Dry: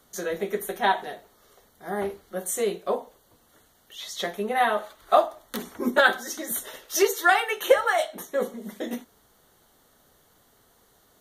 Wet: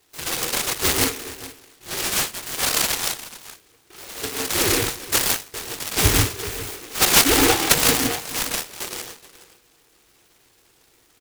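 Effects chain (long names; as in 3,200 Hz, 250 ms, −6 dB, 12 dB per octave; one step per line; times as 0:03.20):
band-splitting scrambler in four parts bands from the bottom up 2413
high-pass filter 91 Hz 6 dB per octave
high-shelf EQ 3,000 Hz −10.5 dB
comb filter 2.4 ms, depth 99%
single-tap delay 423 ms −16.5 dB
reverb whose tail is shaped and stops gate 190 ms rising, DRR −2 dB
short delay modulated by noise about 1,800 Hz, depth 0.18 ms
level +2 dB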